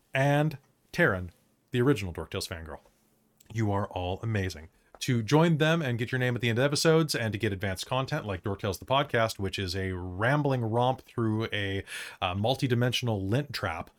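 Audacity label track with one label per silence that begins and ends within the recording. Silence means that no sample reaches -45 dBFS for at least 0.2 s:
0.560000	0.940000	silence
1.300000	1.730000	silence
2.770000	3.410000	silence
4.660000	4.950000	silence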